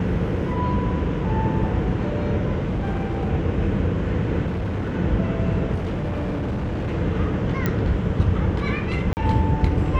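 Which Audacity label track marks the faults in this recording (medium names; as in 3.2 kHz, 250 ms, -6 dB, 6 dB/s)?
2.620000	3.290000	clipped -20 dBFS
4.470000	4.960000	clipped -22 dBFS
5.740000	6.950000	clipped -22 dBFS
7.660000	7.660000	pop -9 dBFS
9.130000	9.170000	dropout 39 ms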